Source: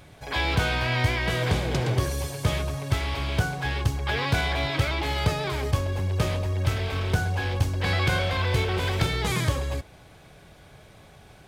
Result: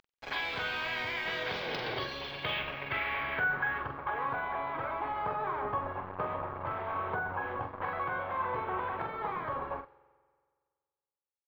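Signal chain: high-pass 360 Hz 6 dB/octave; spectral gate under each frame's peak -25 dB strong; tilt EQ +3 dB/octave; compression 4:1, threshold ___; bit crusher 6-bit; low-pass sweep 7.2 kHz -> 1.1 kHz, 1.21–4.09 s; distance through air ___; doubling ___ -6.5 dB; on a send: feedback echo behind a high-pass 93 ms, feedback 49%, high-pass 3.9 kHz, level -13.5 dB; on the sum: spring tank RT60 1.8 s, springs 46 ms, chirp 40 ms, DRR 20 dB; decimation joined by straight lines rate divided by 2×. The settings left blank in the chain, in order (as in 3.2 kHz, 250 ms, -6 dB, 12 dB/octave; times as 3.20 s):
-30 dBFS, 360 m, 44 ms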